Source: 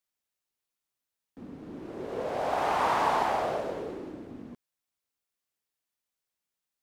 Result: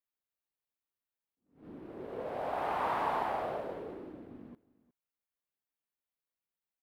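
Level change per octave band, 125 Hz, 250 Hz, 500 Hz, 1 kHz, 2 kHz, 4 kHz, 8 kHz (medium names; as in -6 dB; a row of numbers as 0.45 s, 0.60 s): -6.5 dB, -6.5 dB, -6.0 dB, -6.5 dB, -7.0 dB, -10.5 dB, under -15 dB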